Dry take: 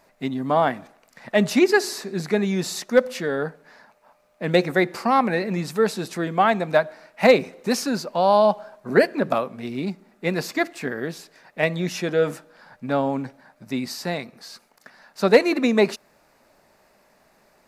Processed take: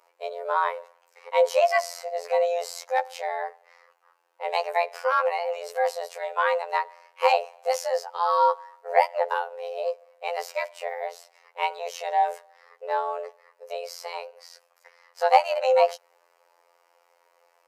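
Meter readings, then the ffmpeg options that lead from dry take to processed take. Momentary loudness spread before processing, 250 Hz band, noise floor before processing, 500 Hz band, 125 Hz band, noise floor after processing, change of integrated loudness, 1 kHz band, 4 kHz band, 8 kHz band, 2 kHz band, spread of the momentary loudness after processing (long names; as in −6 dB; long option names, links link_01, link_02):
14 LU, below −40 dB, −61 dBFS, −4.0 dB, below −40 dB, −66 dBFS, −4.0 dB, +1.5 dB, −6.0 dB, −6.5 dB, −5.5 dB, 15 LU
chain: -af "afreqshift=300,afftfilt=real='hypot(re,im)*cos(PI*b)':imag='0':win_size=2048:overlap=0.75,lowshelf=frequency=350:width_type=q:width=3:gain=-12.5,volume=-4dB"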